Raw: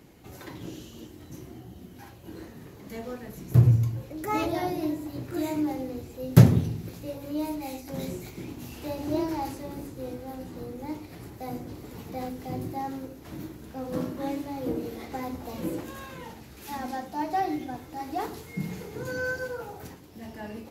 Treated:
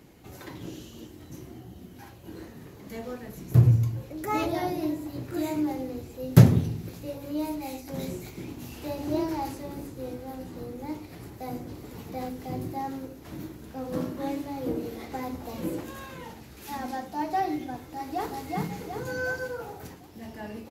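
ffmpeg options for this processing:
ffmpeg -i in.wav -filter_complex "[0:a]asplit=2[link_01][link_02];[link_02]afade=type=in:start_time=17.83:duration=0.01,afade=type=out:start_time=18.3:duration=0.01,aecho=0:1:370|740|1110|1480|1850|2220|2590:0.794328|0.397164|0.198582|0.099291|0.0496455|0.0248228|0.0124114[link_03];[link_01][link_03]amix=inputs=2:normalize=0" out.wav

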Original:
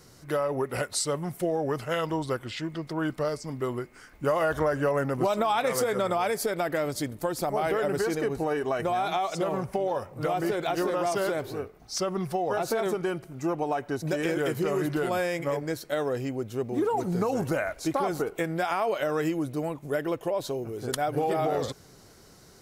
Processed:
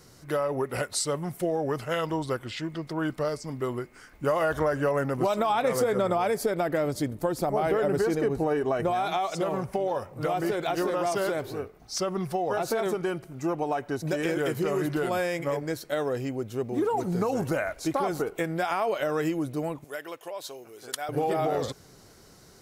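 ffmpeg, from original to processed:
ffmpeg -i in.wav -filter_complex "[0:a]asettb=1/sr,asplit=3[link_01][link_02][link_03];[link_01]atrim=end=5.494[link_04];[link_02]atrim=start=5.49:end=8.91,asetpts=PTS-STARTPTS,afade=type=in:duration=0.004:curve=qsin,afade=type=out:start_time=3.416:duration=0.004:curve=qsin,tiltshelf=frequency=970:gain=3.5[link_05];[link_03]atrim=start=8.906[link_06];[link_04][link_05]acrossfade=duration=0.004:curve1=hsin:curve2=qsin[link_07];[link_07][link_06]acrossfade=duration=0.004:curve1=qsin:curve2=hsin,asettb=1/sr,asplit=3[link_08][link_09][link_10];[link_08]atrim=end=19.844[link_11];[link_09]atrim=start=19.84:end=21.09,asetpts=PTS-STARTPTS,afade=type=in:duration=0.004:curve=qsin,afade=type=out:start_time=1.246:duration=0.004:curve=qsin,highpass=frequency=1500:poles=1[link_12];[link_10]atrim=start=21.086[link_13];[link_11][link_12]acrossfade=duration=0.004:curve1=hsin:curve2=qsin[link_14];[link_14][link_13]acrossfade=duration=0.004:curve1=qsin:curve2=hsin" out.wav

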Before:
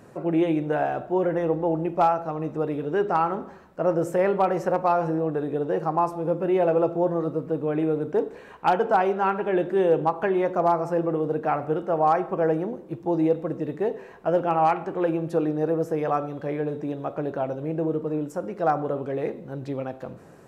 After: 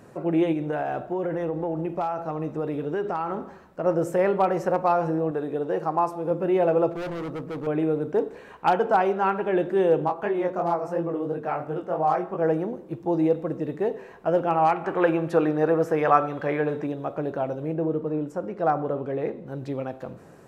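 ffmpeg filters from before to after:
ffmpeg -i in.wav -filter_complex "[0:a]asettb=1/sr,asplit=3[link_01][link_02][link_03];[link_01]atrim=end=0.524[link_04];[link_02]atrim=start=0.52:end=3.86,asetpts=PTS-STARTPTS,afade=type=in:duration=0.004:curve=qsin,afade=type=out:start_time=3.336:duration=0.004:curve=qsin,acompressor=threshold=-23dB:ratio=6:attack=3.2:release=140:knee=1:detection=peak[link_05];[link_03]atrim=start=3.856[link_06];[link_04][link_05]acrossfade=duration=0.004:curve1=hsin:curve2=qsin[link_07];[link_07][link_06]acrossfade=duration=0.004:curve1=qsin:curve2=hsin,asettb=1/sr,asplit=3[link_08][link_09][link_10];[link_08]atrim=end=5.314[link_11];[link_09]atrim=start=5.31:end=6.31,asetpts=PTS-STARTPTS,afade=type=in:duration=0.004:curve=qsin,afade=type=out:start_time=0.996:duration=0.004:curve=qsin,lowshelf=frequency=160:gain=-8.5[link_12];[link_10]atrim=start=6.306[link_13];[link_11][link_12]acrossfade=duration=0.004:curve1=hsin:curve2=qsin[link_14];[link_14][link_13]acrossfade=duration=0.004:curve1=qsin:curve2=hsin,asettb=1/sr,asplit=3[link_15][link_16][link_17];[link_15]atrim=end=6.914[link_18];[link_16]atrim=start=6.91:end=7.67,asetpts=PTS-STARTPTS,afade=type=in:duration=0.004:curve=qsin,afade=type=out:start_time=0.756:duration=0.004:curve=qsin,volume=29.5dB,asoftclip=hard,volume=-29.5dB[link_19];[link_17]atrim=start=7.666[link_20];[link_18][link_19]acrossfade=duration=0.004:curve1=hsin:curve2=qsin[link_21];[link_21][link_20]acrossfade=duration=0.004:curve1=qsin:curve2=hsin,asplit=3[link_22][link_23][link_24];[link_22]afade=type=out:start_time=10.06:duration=0.02[link_25];[link_23]flanger=delay=18:depth=4.9:speed=2.9,afade=type=in:start_time=10.06:duration=0.02,afade=type=out:start_time=12.43:duration=0.02[link_26];[link_24]afade=type=in:start_time=12.43:duration=0.02[link_27];[link_25][link_26][link_27]amix=inputs=3:normalize=0,asettb=1/sr,asplit=3[link_28][link_29][link_30];[link_28]atrim=end=14.844[link_31];[link_29]atrim=start=14.84:end=16.87,asetpts=PTS-STARTPTS,afade=type=in:duration=0.004:curve=qsin,afade=type=out:start_time=2.026:duration=0.004:curve=qsin,equalizer=frequency=1600:width_type=o:width=2.4:gain=10[link_32];[link_30]atrim=start=16.866[link_33];[link_31][link_32]acrossfade=duration=0.004:curve1=hsin:curve2=qsin[link_34];[link_34][link_33]acrossfade=duration=0.004:curve1=qsin:curve2=hsin,asettb=1/sr,asplit=3[link_35][link_36][link_37];[link_35]atrim=end=17.734[link_38];[link_36]atrim=start=17.73:end=19.47,asetpts=PTS-STARTPTS,afade=type=in:duration=0.004:curve=qsin,afade=type=out:start_time=1.736:duration=0.004:curve=qsin,lowpass=frequency=3100:poles=1[link_39];[link_37]atrim=start=19.466[link_40];[link_38][link_39]acrossfade=duration=0.004:curve1=hsin:curve2=qsin[link_41];[link_41][link_40]acrossfade=duration=0.004:curve1=qsin:curve2=hsin" out.wav

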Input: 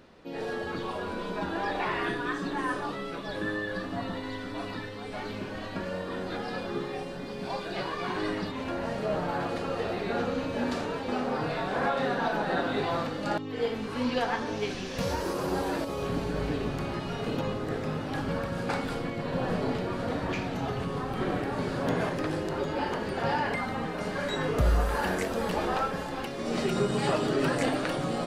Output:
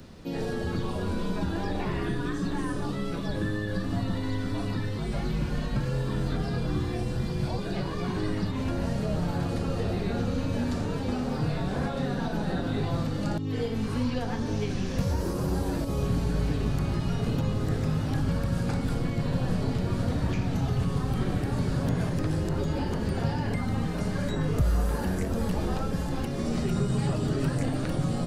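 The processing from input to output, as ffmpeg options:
ffmpeg -i in.wav -filter_complex "[0:a]asettb=1/sr,asplit=3[link_01][link_02][link_03];[link_01]atrim=end=4.984[link_04];[link_02]atrim=start=4.98:end=7.58,asetpts=PTS-STARTPTS,afade=type=in:duration=0.004:curve=qsin,afade=type=out:start_time=2.596:duration=0.004:curve=qsin,afreqshift=-53[link_05];[link_03]atrim=start=7.576[link_06];[link_04][link_05]acrossfade=duration=0.004:curve1=hsin:curve2=qsin[link_07];[link_07][link_06]acrossfade=duration=0.004:curve1=qsin:curve2=hsin,bass=frequency=250:gain=14,treble=frequency=4000:gain=11,acrossover=split=110|590|2200[link_08][link_09][link_10][link_11];[link_08]acompressor=threshold=-29dB:ratio=4[link_12];[link_09]acompressor=threshold=-31dB:ratio=4[link_13];[link_10]acompressor=threshold=-42dB:ratio=4[link_14];[link_11]acompressor=threshold=-49dB:ratio=4[link_15];[link_12][link_13][link_14][link_15]amix=inputs=4:normalize=0,volume=1.5dB" out.wav

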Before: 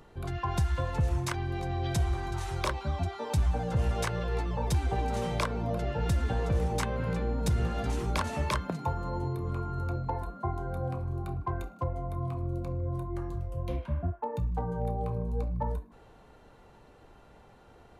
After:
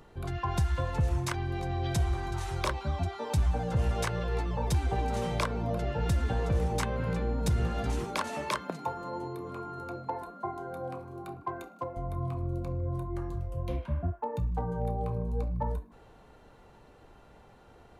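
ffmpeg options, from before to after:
ffmpeg -i in.wav -filter_complex "[0:a]asettb=1/sr,asplit=3[link_01][link_02][link_03];[link_01]atrim=end=8.044[link_04];[link_02]atrim=start=8.04:end=11.97,asetpts=PTS-STARTPTS,afade=type=in:duration=0.004:curve=qsin,afade=type=out:start_time=3.926:duration=0.004:curve=qsin,highpass=240[link_05];[link_03]atrim=start=11.966[link_06];[link_04][link_05]acrossfade=duration=0.004:curve1=hsin:curve2=qsin[link_07];[link_07][link_06]acrossfade=duration=0.004:curve1=qsin:curve2=hsin" out.wav

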